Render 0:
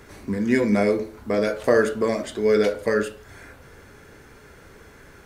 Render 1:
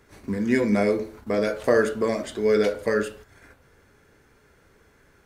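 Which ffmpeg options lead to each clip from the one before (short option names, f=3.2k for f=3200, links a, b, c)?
-af "agate=range=-9dB:threshold=-42dB:ratio=16:detection=peak,volume=-1.5dB"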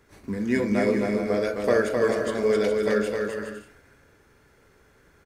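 -af "aecho=1:1:260|416|509.6|565.8|599.5:0.631|0.398|0.251|0.158|0.1,volume=-2.5dB"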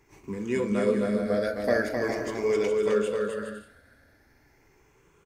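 -af "afftfilt=real='re*pow(10,10/40*sin(2*PI*(0.72*log(max(b,1)*sr/1024/100)/log(2)-(0.42)*(pts-256)/sr)))':imag='im*pow(10,10/40*sin(2*PI*(0.72*log(max(b,1)*sr/1024/100)/log(2)-(0.42)*(pts-256)/sr)))':win_size=1024:overlap=0.75,volume=-4dB"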